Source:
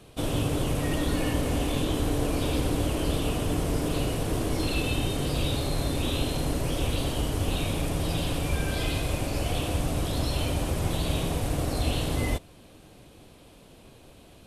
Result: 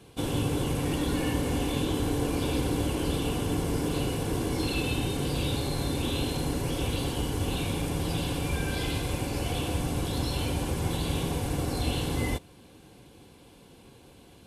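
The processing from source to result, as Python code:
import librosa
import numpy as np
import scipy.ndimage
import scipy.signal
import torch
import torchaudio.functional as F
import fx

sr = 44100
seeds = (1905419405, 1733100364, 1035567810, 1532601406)

y = fx.notch_comb(x, sr, f0_hz=630.0)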